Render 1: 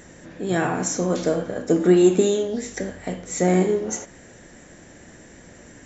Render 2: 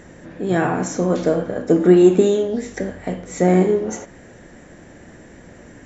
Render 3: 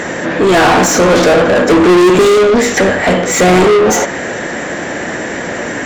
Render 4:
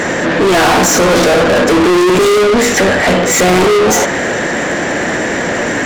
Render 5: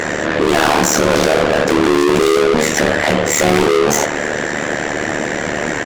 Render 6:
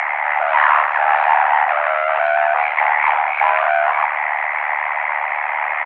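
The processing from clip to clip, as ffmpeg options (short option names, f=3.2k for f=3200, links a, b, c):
-af "highshelf=f=3.5k:g=-11,volume=4dB"
-filter_complex "[0:a]asplit=2[a][b];[b]highpass=f=720:p=1,volume=36dB,asoftclip=type=tanh:threshold=-1dB[c];[a][c]amix=inputs=2:normalize=0,lowpass=f=4.3k:p=1,volume=-6dB"
-af "acontrast=47,asoftclip=type=tanh:threshold=-7.5dB"
-filter_complex "[0:a]tremolo=f=75:d=0.974,asplit=2[a][b];[b]adelay=22,volume=-12dB[c];[a][c]amix=inputs=2:normalize=0"
-af "highpass=f=480:t=q:w=0.5412,highpass=f=480:t=q:w=1.307,lowpass=f=2.1k:t=q:w=0.5176,lowpass=f=2.1k:t=q:w=0.7071,lowpass=f=2.1k:t=q:w=1.932,afreqshift=270,acompressor=mode=upward:threshold=-23dB:ratio=2.5,volume=1.5dB"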